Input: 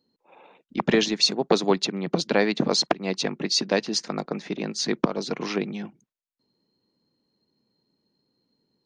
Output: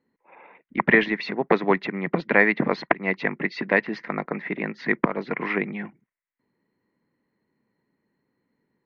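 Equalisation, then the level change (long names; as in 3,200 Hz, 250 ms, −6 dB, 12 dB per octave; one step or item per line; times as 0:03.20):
low-pass with resonance 2,000 Hz, resonance Q 6
high-frequency loss of the air 170 metres
parametric band 1,000 Hz +4.5 dB 0.21 octaves
0.0 dB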